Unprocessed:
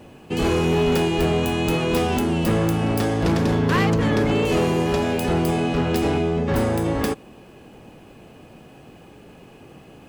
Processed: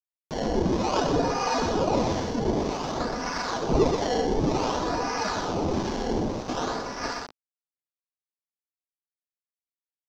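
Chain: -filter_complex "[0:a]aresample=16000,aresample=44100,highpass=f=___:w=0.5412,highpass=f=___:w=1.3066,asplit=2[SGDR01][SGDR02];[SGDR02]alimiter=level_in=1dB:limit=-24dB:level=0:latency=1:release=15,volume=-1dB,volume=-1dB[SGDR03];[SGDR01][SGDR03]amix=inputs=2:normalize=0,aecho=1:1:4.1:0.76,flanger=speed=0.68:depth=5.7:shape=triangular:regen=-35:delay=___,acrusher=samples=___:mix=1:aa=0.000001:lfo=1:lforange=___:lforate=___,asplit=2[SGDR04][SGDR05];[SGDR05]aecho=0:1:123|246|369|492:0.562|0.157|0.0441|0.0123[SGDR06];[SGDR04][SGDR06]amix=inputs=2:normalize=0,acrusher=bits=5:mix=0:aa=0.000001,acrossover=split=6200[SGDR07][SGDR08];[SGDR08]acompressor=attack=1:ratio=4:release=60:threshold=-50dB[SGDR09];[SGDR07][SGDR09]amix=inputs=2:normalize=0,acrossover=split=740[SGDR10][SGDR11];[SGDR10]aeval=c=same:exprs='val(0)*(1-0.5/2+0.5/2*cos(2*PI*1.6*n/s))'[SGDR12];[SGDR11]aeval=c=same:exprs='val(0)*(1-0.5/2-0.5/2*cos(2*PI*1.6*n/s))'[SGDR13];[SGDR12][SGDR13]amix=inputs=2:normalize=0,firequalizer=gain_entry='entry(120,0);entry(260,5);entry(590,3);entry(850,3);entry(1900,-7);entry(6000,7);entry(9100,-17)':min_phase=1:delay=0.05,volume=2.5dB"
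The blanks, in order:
1300, 1300, 2.4, 24, 24, 0.54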